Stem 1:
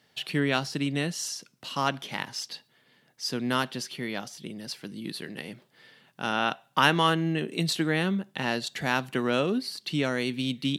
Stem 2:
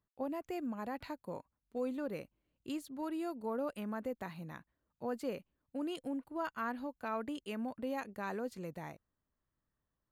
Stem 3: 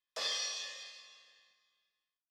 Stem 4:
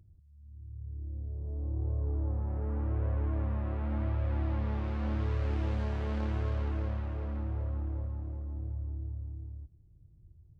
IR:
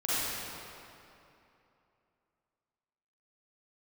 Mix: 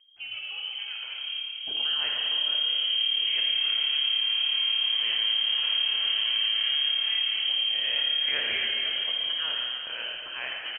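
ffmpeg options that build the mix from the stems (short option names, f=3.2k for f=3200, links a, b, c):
-filter_complex "[0:a]adelay=1500,volume=-13dB,asplit=2[a][b];[b]volume=-5dB[c];[1:a]volume=-5dB,asplit=2[d][e];[e]volume=-3.5dB[f];[2:a]highpass=1.4k,volume=-17.5dB[g];[3:a]dynaudnorm=f=280:g=17:m=8dB,flanger=delay=6:depth=4.6:regen=-69:speed=0.72:shape=sinusoidal,volume=-0.5dB,asplit=2[h][i];[i]volume=-3.5dB[j];[4:a]atrim=start_sample=2205[k];[c][f][j]amix=inputs=3:normalize=0[l];[l][k]afir=irnorm=-1:irlink=0[m];[a][d][g][h][m]amix=inputs=5:normalize=0,lowpass=f=2.8k:t=q:w=0.5098,lowpass=f=2.8k:t=q:w=0.6013,lowpass=f=2.8k:t=q:w=0.9,lowpass=f=2.8k:t=q:w=2.563,afreqshift=-3300,acompressor=threshold=-23dB:ratio=6"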